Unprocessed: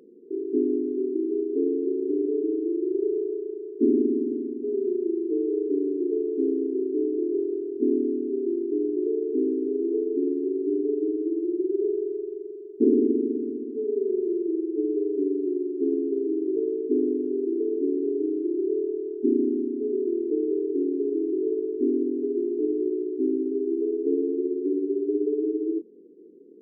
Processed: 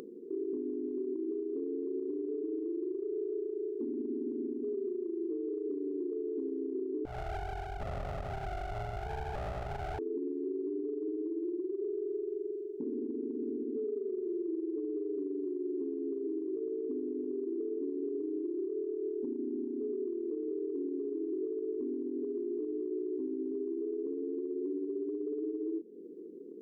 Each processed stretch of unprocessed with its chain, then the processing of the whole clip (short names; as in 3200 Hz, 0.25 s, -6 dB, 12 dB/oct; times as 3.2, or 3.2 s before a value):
7.05–9.99 minimum comb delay 1.7 ms + bell 360 Hz -13.5 dB 1.4 oct + compressor 4:1, threshold -33 dBFS
whole clip: compressor 10:1, threshold -29 dBFS; limiter -29 dBFS; upward compressor, threshold -41 dBFS